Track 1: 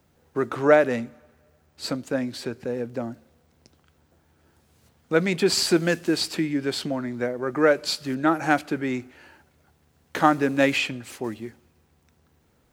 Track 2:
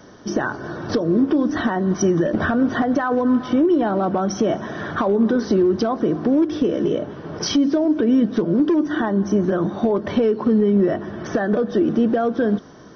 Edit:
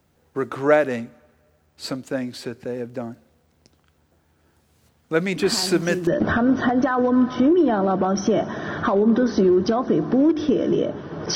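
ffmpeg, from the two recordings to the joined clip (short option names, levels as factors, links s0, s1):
-filter_complex "[1:a]asplit=2[s0][s1];[0:a]apad=whole_dur=11.35,atrim=end=11.35,atrim=end=6.072[s2];[s1]atrim=start=2.198:end=7.48[s3];[s0]atrim=start=1.49:end=2.2,asetpts=PTS-STARTPTS,volume=0.335,afade=t=in:d=0.004:c=hsin,afade=t=out:st=0.706:d=0.004:c=hsin,adelay=5360[s4];[s2][s3]acrossfade=d=0.004:c1=hsin:c2=hsin[s5];[s5][s4]amix=inputs=2:normalize=0"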